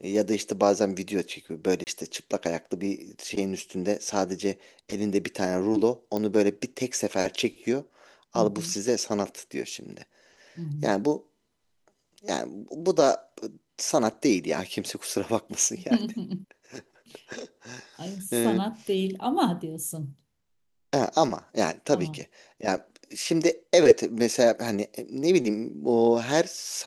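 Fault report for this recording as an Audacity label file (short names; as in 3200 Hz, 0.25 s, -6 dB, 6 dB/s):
1.840000	1.870000	gap 29 ms
6.170000	6.170000	pop -17 dBFS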